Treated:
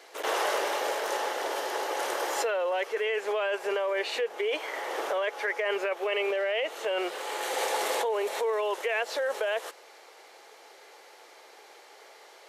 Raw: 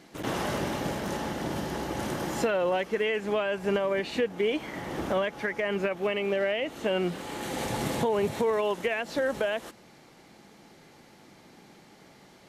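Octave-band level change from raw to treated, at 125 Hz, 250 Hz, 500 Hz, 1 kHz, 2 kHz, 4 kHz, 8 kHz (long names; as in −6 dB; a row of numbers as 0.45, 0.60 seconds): below −35 dB, −11.5 dB, −1.0 dB, +2.5 dB, +1.5 dB, +2.5 dB, +4.0 dB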